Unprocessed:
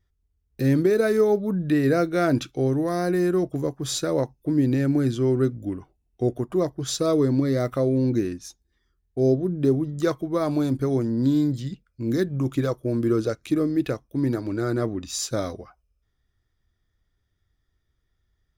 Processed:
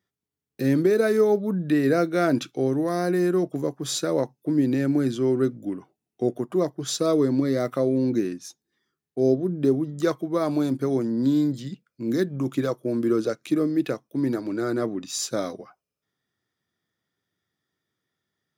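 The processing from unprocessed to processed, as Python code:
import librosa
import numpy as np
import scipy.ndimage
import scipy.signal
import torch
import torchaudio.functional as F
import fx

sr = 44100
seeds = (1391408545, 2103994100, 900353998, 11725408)

y = scipy.signal.sosfilt(scipy.signal.butter(4, 150.0, 'highpass', fs=sr, output='sos'), x)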